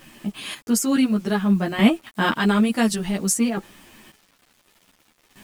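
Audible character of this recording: chopped level 0.56 Hz, depth 60%, duty 30%; a quantiser's noise floor 10-bit, dither none; a shimmering, thickened sound

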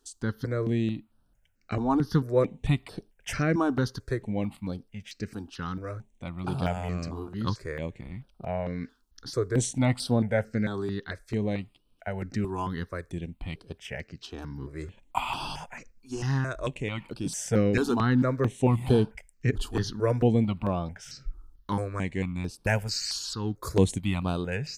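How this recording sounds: notches that jump at a steady rate 4.5 Hz 560–6900 Hz

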